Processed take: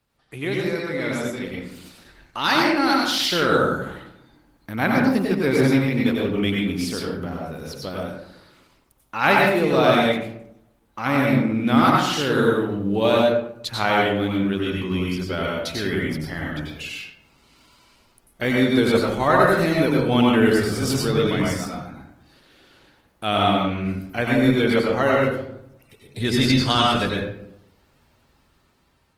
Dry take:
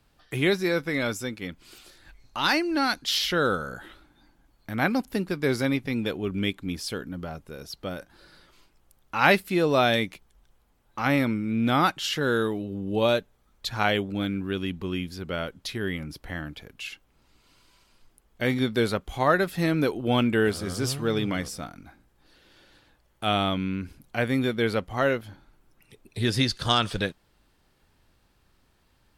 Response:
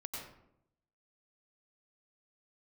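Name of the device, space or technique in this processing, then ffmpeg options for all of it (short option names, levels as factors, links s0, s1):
far-field microphone of a smart speaker: -filter_complex "[1:a]atrim=start_sample=2205[s0];[0:a][s0]afir=irnorm=-1:irlink=0,highpass=f=81:p=1,dynaudnorm=f=520:g=5:m=2.51" -ar 48000 -c:a libopus -b:a 20k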